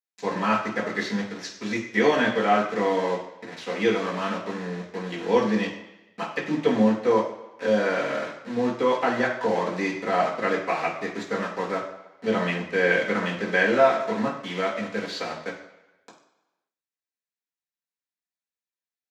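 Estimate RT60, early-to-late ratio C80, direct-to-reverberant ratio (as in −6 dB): 1.0 s, 9.5 dB, −7.0 dB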